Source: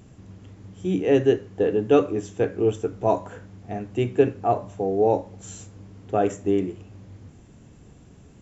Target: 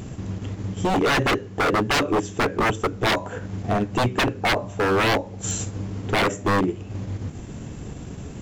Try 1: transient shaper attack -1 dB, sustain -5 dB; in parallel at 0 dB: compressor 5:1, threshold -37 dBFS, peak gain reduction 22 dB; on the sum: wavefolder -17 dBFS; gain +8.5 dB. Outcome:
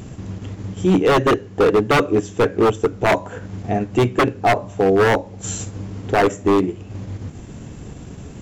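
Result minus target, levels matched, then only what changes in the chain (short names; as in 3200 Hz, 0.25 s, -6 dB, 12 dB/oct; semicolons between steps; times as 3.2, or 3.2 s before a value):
wavefolder: distortion -12 dB
change: wavefolder -23 dBFS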